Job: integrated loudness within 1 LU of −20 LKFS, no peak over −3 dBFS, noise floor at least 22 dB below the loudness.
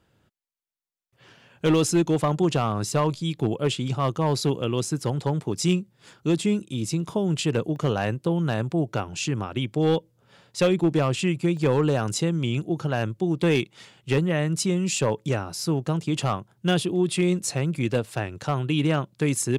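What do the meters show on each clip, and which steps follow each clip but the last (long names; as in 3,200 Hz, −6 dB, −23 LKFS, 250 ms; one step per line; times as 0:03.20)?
share of clipped samples 0.7%; peaks flattened at −14.0 dBFS; number of dropouts 3; longest dropout 1.1 ms; integrated loudness −25.0 LKFS; sample peak −14.0 dBFS; target loudness −20.0 LKFS
→ clipped peaks rebuilt −14 dBFS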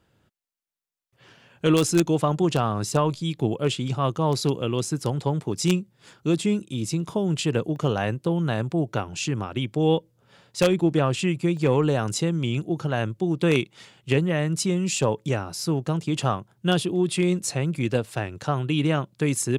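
share of clipped samples 0.0%; number of dropouts 3; longest dropout 1.1 ms
→ repair the gap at 0:07.76/0:11.57/0:14.98, 1.1 ms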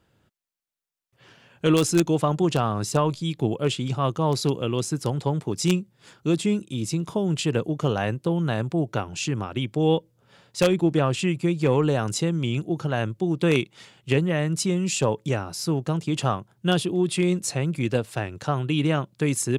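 number of dropouts 0; integrated loudness −24.5 LKFS; sample peak −5.0 dBFS; target loudness −20.0 LKFS
→ level +4.5 dB
brickwall limiter −3 dBFS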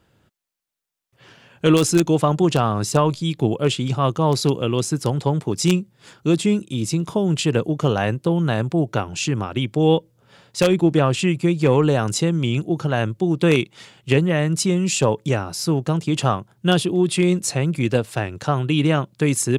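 integrated loudness −20.0 LKFS; sample peak −3.0 dBFS; background noise floor −62 dBFS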